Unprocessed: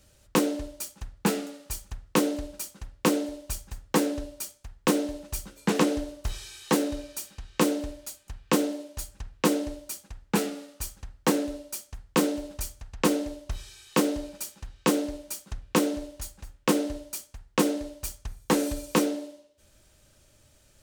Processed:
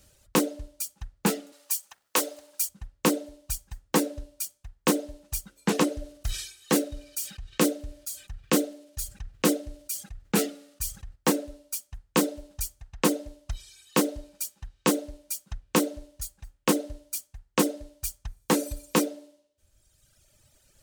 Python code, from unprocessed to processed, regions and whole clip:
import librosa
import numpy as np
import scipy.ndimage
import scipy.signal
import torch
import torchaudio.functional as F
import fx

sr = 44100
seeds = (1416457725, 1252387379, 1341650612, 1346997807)

y = fx.chain(x, sr, fx.law_mismatch(coded='mu'),
    fx.highpass(hz=560.0, slope=12),
    fx.high_shelf(hz=5200.0, db=4.5), at=(1.52, 2.69))
y = fx.chain(y, sr, fx.peak_eq(hz=940.0, db=-7.0, octaves=0.31),
    fx.sustainer(db_per_s=71.0), at=(5.94, 11.16))
y = fx.dereverb_blind(y, sr, rt60_s=1.6)
y = fx.high_shelf(y, sr, hz=6800.0, db=5.0)